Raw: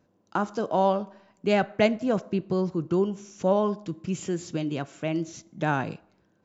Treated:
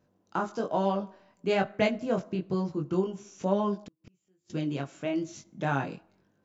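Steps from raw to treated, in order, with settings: chorus 1.1 Hz, delay 20 ms, depth 2.4 ms; 3.85–4.50 s: inverted gate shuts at -32 dBFS, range -38 dB

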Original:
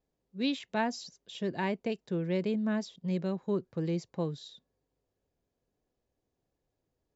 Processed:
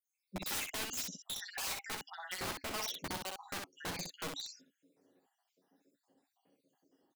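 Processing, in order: random holes in the spectrogram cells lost 73%; high-pass 180 Hz 24 dB/octave; in parallel at -2 dB: peak limiter -28.5 dBFS, peak gain reduction 8 dB; on the sum: compression 5:1, threshold -31 dBFS, peak gain reduction 7.5 dB; saturation -33 dBFS, distortion -10 dB; small resonant body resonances 280/800/2900 Hz, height 9 dB, ringing for 90 ms; integer overflow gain 40 dB; on a send: early reflections 11 ms -4.5 dB, 63 ms -3.5 dB; on the sum: trim +5.5 dB

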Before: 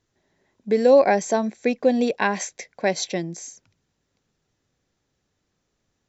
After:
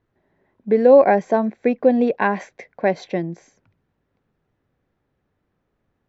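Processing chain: low-pass 1.8 kHz 12 dB/octave; trim +3.5 dB

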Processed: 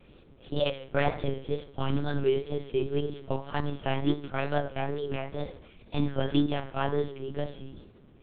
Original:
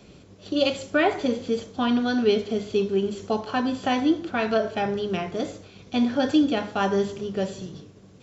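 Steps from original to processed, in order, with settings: monotone LPC vocoder at 8 kHz 140 Hz; wow and flutter 77 cents; trim -5 dB

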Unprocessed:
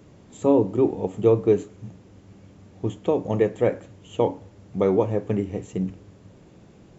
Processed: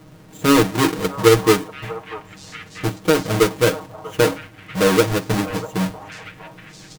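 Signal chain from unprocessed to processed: square wave that keeps the level; comb 6.4 ms, depth 83%; repeats whose band climbs or falls 641 ms, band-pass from 810 Hz, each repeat 1.4 oct, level -8.5 dB; trim -1.5 dB

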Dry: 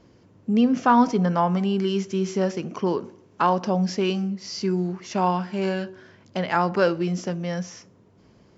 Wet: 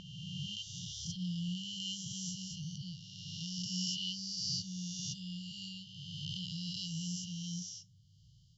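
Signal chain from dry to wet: reverse spectral sustain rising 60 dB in 2.18 s; brick-wall FIR band-stop 170–2800 Hz; attacks held to a fixed rise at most 130 dB/s; trim -6 dB

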